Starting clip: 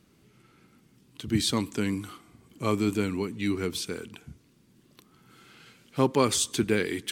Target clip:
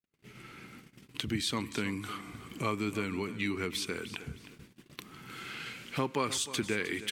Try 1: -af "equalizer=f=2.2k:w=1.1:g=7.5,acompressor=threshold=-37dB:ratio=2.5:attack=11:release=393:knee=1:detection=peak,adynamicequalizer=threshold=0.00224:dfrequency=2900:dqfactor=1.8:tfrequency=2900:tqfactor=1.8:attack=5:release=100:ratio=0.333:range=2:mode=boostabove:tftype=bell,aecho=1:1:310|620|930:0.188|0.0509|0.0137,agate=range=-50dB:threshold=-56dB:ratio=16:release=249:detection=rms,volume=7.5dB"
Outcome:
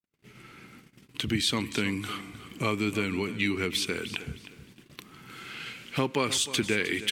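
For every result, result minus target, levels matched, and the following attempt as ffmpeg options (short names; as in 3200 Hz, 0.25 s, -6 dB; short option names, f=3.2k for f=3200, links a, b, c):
compressor: peak gain reduction -5 dB; 1000 Hz band -3.5 dB
-af "equalizer=f=2.2k:w=1.1:g=7.5,acompressor=threshold=-45dB:ratio=2.5:attack=11:release=393:knee=1:detection=peak,adynamicequalizer=threshold=0.00224:dfrequency=2900:dqfactor=1.8:tfrequency=2900:tqfactor=1.8:attack=5:release=100:ratio=0.333:range=2:mode=boostabove:tftype=bell,aecho=1:1:310|620|930:0.188|0.0509|0.0137,agate=range=-50dB:threshold=-56dB:ratio=16:release=249:detection=rms,volume=7.5dB"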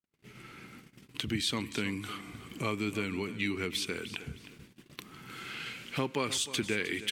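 1000 Hz band -3.5 dB
-af "equalizer=f=2.2k:w=1.1:g=7.5,acompressor=threshold=-45dB:ratio=2.5:attack=11:release=393:knee=1:detection=peak,adynamicequalizer=threshold=0.00224:dfrequency=1100:dqfactor=1.8:tfrequency=1100:tqfactor=1.8:attack=5:release=100:ratio=0.333:range=2:mode=boostabove:tftype=bell,aecho=1:1:310|620|930:0.188|0.0509|0.0137,agate=range=-50dB:threshold=-56dB:ratio=16:release=249:detection=rms,volume=7.5dB"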